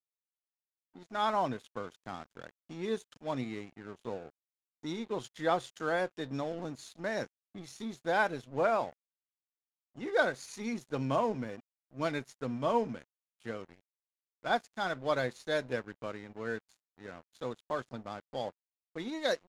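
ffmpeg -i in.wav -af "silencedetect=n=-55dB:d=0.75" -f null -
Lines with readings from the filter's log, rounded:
silence_start: 0.00
silence_end: 0.95 | silence_duration: 0.95
silence_start: 8.93
silence_end: 9.96 | silence_duration: 1.03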